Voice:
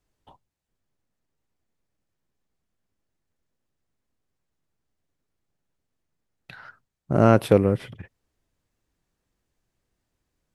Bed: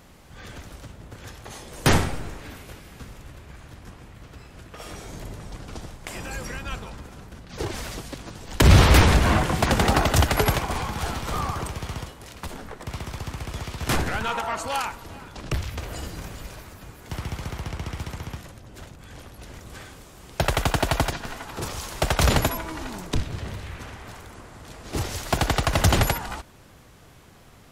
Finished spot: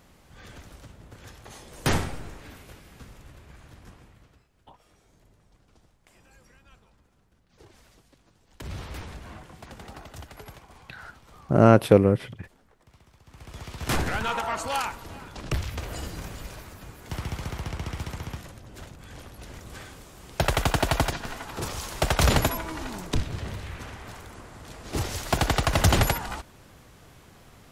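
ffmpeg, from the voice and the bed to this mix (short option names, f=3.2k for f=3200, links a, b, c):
-filter_complex "[0:a]adelay=4400,volume=1dB[a];[1:a]volume=17dB,afade=t=out:st=3.89:d=0.59:silence=0.125893,afade=t=in:st=13.25:d=0.81:silence=0.0749894[b];[a][b]amix=inputs=2:normalize=0"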